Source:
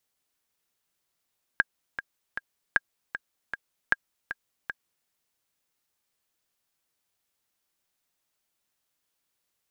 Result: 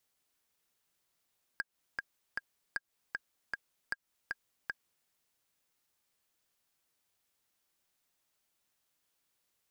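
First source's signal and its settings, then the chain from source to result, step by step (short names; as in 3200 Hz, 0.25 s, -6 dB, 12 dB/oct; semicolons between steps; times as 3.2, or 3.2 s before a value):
metronome 155 bpm, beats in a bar 3, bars 3, 1620 Hz, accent 11.5 dB -7 dBFS
compressor 6:1, threshold -28 dBFS; soft clip -25 dBFS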